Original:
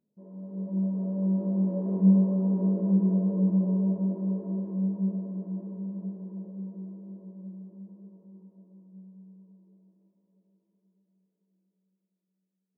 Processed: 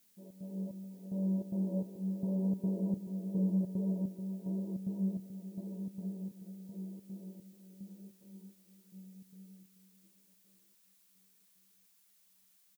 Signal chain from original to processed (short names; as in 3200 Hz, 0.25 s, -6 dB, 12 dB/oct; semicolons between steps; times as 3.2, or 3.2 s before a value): elliptic low-pass 900 Hz, stop band 40 dB; in parallel at -1.5 dB: compressor, threshold -33 dBFS, peak gain reduction 16 dB; on the sum: step gate "xxx.xxx...." 148 bpm -12 dB; added noise blue -60 dBFS; on a send: echo 0.434 s -11 dB; on the sum: gain -8.5 dB